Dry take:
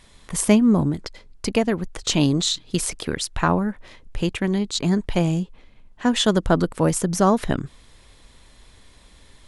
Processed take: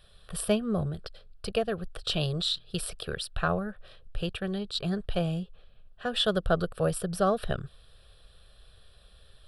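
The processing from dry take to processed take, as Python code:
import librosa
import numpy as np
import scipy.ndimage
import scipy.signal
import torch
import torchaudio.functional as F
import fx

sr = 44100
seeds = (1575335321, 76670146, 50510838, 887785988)

y = fx.fixed_phaser(x, sr, hz=1400.0, stages=8)
y = y * 10.0 ** (-4.0 / 20.0)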